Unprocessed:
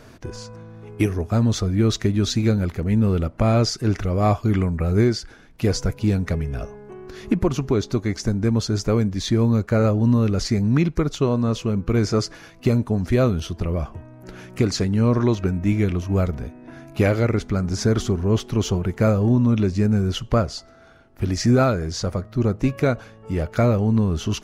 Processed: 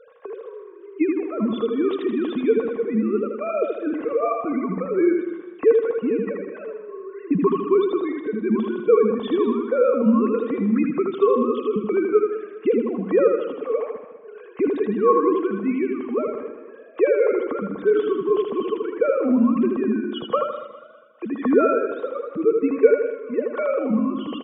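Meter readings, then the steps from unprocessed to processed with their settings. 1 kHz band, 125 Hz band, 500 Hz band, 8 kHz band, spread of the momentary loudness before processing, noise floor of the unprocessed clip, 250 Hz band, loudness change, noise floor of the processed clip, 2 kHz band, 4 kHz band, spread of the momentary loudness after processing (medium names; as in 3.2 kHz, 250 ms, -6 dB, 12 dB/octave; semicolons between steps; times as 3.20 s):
+2.0 dB, -19.0 dB, +5.5 dB, under -40 dB, 11 LU, -47 dBFS, -1.0 dB, -0.5 dB, -43 dBFS, -2.5 dB, under -10 dB, 14 LU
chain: formants replaced by sine waves; small resonant body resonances 460/1100 Hz, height 16 dB, ringing for 55 ms; on a send: feedback delay 79 ms, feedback 42%, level -4 dB; on the sum: modulated delay 202 ms, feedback 37%, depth 74 cents, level -14 dB; trim -7 dB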